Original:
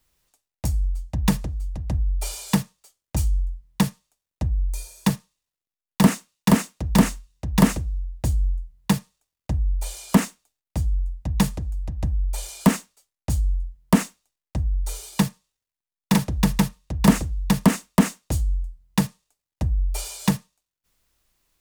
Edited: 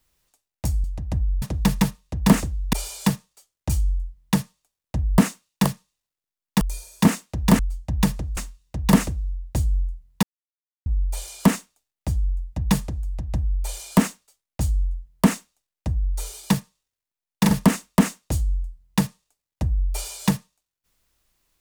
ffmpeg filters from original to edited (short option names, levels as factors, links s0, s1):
-filter_complex "[0:a]asplit=13[s0][s1][s2][s3][s4][s5][s6][s7][s8][s9][s10][s11][s12];[s0]atrim=end=0.842[s13];[s1]atrim=start=1.618:end=2.202[s14];[s2]atrim=start=16.198:end=17.512[s15];[s3]atrim=start=2.198:end=4.652[s16];[s4]atrim=start=6.038:end=6.522[s17];[s5]atrim=start=5.088:end=6.042[s18];[s6]atrim=start=4.648:end=5.092[s19];[s7]atrim=start=6.518:end=7.062[s20];[s8]atrim=start=0.838:end=1.622[s21];[s9]atrim=start=7.058:end=8.92,asetpts=PTS-STARTPTS,afade=t=out:st=1.858:d=0.004:c=hsin[s22];[s10]atrim=start=8.92:end=9.55,asetpts=PTS-STARTPTS,volume=0[s23];[s11]atrim=start=9.55:end=16.202,asetpts=PTS-STARTPTS,afade=t=in:d=0.004:c=hsin[s24];[s12]atrim=start=17.508[s25];[s13][s14]acrossfade=d=0.004:c1=hsin:c2=hsin[s26];[s26][s15]acrossfade=d=0.004:c1=hsin:c2=hsin[s27];[s27][s16]acrossfade=d=0.004:c1=hsin:c2=hsin[s28];[s28][s17]acrossfade=d=0.004:c1=hsin:c2=hsin[s29];[s29][s18]acrossfade=d=0.004:c1=hsin:c2=hsin[s30];[s30][s19]acrossfade=d=0.004:c1=hsin:c2=hsin[s31];[s31][s20]acrossfade=d=0.004:c1=hsin:c2=hsin[s32];[s32][s21]acrossfade=d=0.004:c1=hsin:c2=hsin[s33];[s22][s23][s24]concat=n=3:v=0:a=1[s34];[s33][s34]acrossfade=d=0.004:c1=hsin:c2=hsin[s35];[s35][s25]acrossfade=d=0.004:c1=hsin:c2=hsin"